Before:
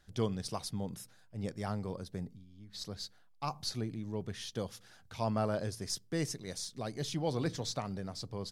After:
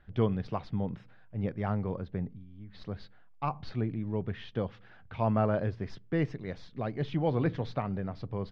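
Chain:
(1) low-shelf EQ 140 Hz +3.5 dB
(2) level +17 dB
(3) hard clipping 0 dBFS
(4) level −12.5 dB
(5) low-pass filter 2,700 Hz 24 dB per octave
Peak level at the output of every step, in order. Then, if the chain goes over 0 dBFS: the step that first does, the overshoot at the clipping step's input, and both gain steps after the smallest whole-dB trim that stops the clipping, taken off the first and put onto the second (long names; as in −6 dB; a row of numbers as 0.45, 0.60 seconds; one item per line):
−19.0, −2.0, −2.0, −14.5, −14.5 dBFS
no step passes full scale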